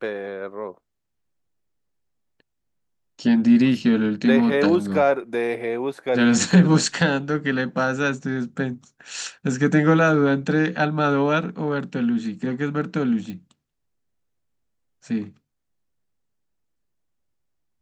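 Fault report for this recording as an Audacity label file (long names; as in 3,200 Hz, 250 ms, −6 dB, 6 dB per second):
13.300000	13.300000	click −22 dBFS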